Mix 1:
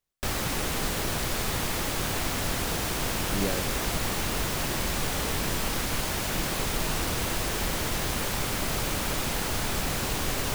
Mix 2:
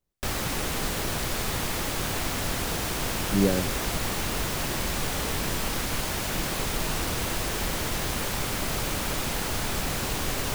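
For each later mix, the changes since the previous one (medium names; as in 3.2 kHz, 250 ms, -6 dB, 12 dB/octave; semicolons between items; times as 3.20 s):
speech: add tilt shelf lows +9.5 dB, about 1.2 kHz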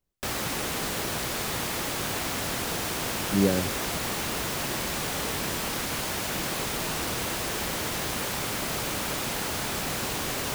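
background: add high-pass 140 Hz 6 dB/octave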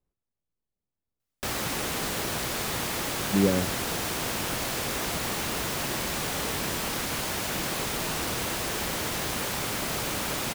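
background: entry +1.20 s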